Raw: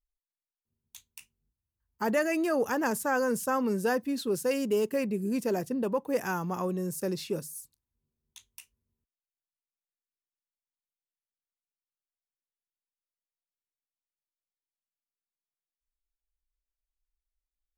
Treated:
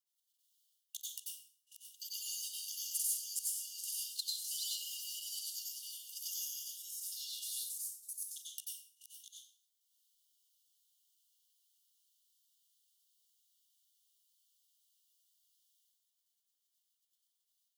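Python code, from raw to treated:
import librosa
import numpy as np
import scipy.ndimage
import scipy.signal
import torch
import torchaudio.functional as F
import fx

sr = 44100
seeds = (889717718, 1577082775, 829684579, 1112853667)

y = fx.reverse_delay(x, sr, ms=490, wet_db=-6)
y = fx.level_steps(y, sr, step_db=16)
y = fx.brickwall_highpass(y, sr, low_hz=2800.0)
y = fx.rev_plate(y, sr, seeds[0], rt60_s=0.77, hf_ratio=0.55, predelay_ms=80, drr_db=-7.0)
y = fx.band_squash(y, sr, depth_pct=40)
y = y * librosa.db_to_amplitude(3.5)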